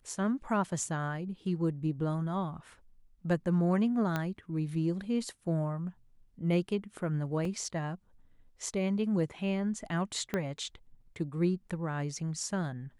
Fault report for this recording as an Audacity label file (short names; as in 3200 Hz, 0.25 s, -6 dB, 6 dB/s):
4.160000	4.160000	pop -18 dBFS
7.450000	7.450000	gap 2.4 ms
10.340000	10.340000	pop -18 dBFS